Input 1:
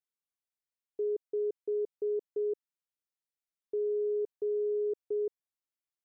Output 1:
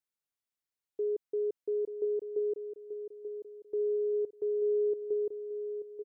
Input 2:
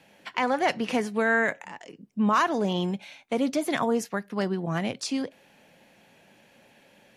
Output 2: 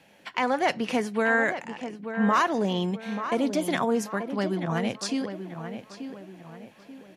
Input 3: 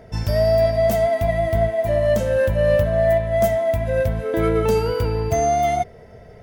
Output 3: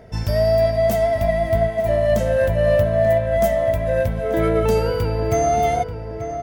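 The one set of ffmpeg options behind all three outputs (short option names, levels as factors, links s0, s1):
-filter_complex "[0:a]asplit=2[s0][s1];[s1]adelay=885,lowpass=f=2300:p=1,volume=0.355,asplit=2[s2][s3];[s3]adelay=885,lowpass=f=2300:p=1,volume=0.41,asplit=2[s4][s5];[s5]adelay=885,lowpass=f=2300:p=1,volume=0.41,asplit=2[s6][s7];[s7]adelay=885,lowpass=f=2300:p=1,volume=0.41,asplit=2[s8][s9];[s9]adelay=885,lowpass=f=2300:p=1,volume=0.41[s10];[s0][s2][s4][s6][s8][s10]amix=inputs=6:normalize=0"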